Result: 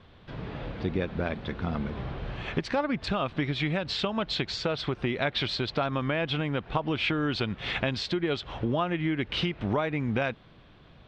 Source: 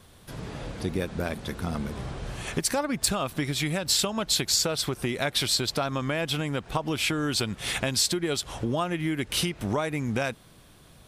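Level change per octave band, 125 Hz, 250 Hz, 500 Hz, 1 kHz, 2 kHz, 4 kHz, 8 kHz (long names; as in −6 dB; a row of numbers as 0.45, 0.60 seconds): 0.0, 0.0, 0.0, 0.0, 0.0, −5.0, −24.5 decibels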